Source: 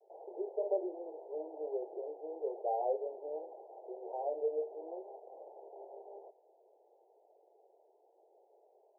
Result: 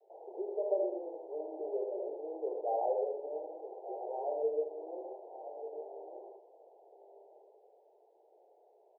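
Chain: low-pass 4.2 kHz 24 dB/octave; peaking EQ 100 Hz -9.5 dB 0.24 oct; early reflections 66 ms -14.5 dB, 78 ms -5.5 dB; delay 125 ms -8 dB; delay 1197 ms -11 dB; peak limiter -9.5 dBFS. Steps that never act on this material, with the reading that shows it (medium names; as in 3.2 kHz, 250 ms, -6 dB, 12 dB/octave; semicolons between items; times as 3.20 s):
low-pass 4.2 kHz: input has nothing above 960 Hz; peaking EQ 100 Hz: input has nothing below 290 Hz; peak limiter -9.5 dBFS: peak at its input -20.0 dBFS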